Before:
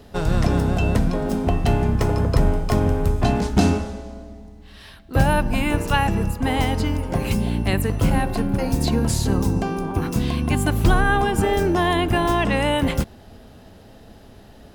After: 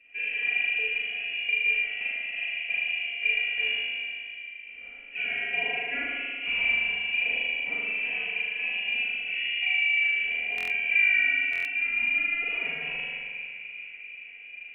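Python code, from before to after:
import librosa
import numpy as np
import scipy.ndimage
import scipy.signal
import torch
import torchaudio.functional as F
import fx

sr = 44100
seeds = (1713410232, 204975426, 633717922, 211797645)

y = 10.0 ** (-11.0 / 20.0) * np.tanh(x / 10.0 ** (-11.0 / 20.0))
y = fx.vowel_filter(y, sr, vowel='a')
y = fx.low_shelf(y, sr, hz=220.0, db=-9.5)
y = fx.notch(y, sr, hz=560.0, q=12.0)
y = y + 0.88 * np.pad(y, (int(4.2 * sr / 1000.0), 0))[:len(y)]
y = fx.echo_wet_bandpass(y, sr, ms=394, feedback_pct=72, hz=520.0, wet_db=-14.0)
y = fx.rider(y, sr, range_db=4, speed_s=2.0)
y = fx.tilt_eq(y, sr, slope=-2.0)
y = fx.rev_spring(y, sr, rt60_s=2.0, pass_ms=(38,), chirp_ms=20, drr_db=-6.5)
y = fx.freq_invert(y, sr, carrier_hz=3100)
y = fx.buffer_glitch(y, sr, at_s=(10.56, 11.51), block=1024, repeats=5)
y = y * 10.0 ** (-4.5 / 20.0)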